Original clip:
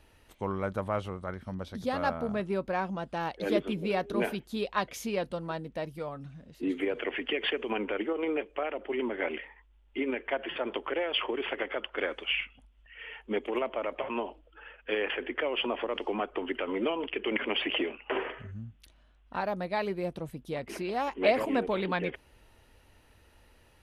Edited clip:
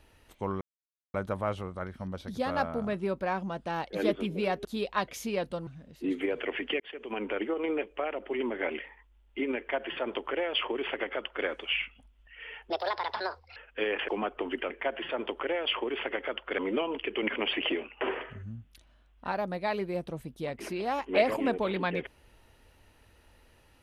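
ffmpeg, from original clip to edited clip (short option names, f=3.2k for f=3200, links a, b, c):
-filter_complex "[0:a]asplit=10[a][b][c][d][e][f][g][h][i][j];[a]atrim=end=0.61,asetpts=PTS-STARTPTS,afade=t=out:st=0.606:d=0.004:c=hsin,apad=pad_dur=0.53[k];[b]atrim=start=0.61:end=4.122,asetpts=PTS-STARTPTS,afade=t=in:d=0.004:c=hsin[l];[c]atrim=start=4.448:end=5.472[m];[d]atrim=start=6.258:end=7.39,asetpts=PTS-STARTPTS,afade=t=out:st=1.128:d=0.004:c=hsin[n];[e]atrim=start=7.39:end=13.294,asetpts=PTS-STARTPTS,afade=t=in:d=0.52[o];[f]atrim=start=13.29:end=14.67,asetpts=PTS-STARTPTS,asetrate=70560,aresample=44100,atrim=end_sample=38036,asetpts=PTS-STARTPTS[p];[g]atrim=start=14.666:end=15.192[q];[h]atrim=start=16.048:end=16.672[r];[i]atrim=start=10.168:end=12.052[s];[j]atrim=start=16.668[t];[k][l]concat=n=2:v=0:a=1[u];[u][m]acrossfade=d=0.004:c1=hsin:c2=hsin[v];[n][o]concat=n=2:v=0:a=1[w];[v][w]acrossfade=d=0.004:c1=hsin:c2=hsin[x];[x][p]acrossfade=d=0.004:c1=hsin:c2=hsin[y];[y][q]acrossfade=d=0.004:c1=hsin:c2=hsin[z];[z][r]acrossfade=d=0.004:c1=hsin:c2=hsin[aa];[aa][s]acrossfade=d=0.004:c1=hsin:c2=hsin[ab];[ab][t]acrossfade=d=0.004:c1=hsin:c2=hsin"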